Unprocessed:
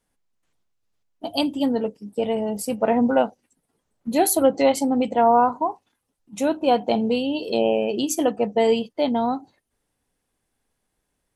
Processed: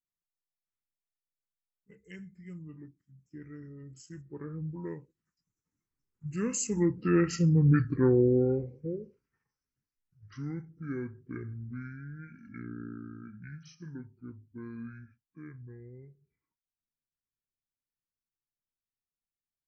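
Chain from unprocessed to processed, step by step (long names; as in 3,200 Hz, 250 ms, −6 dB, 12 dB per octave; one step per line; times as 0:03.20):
source passing by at 0:04.46, 40 m/s, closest 11 metres
phaser with its sweep stopped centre 2,700 Hz, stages 4
wrong playback speed 78 rpm record played at 45 rpm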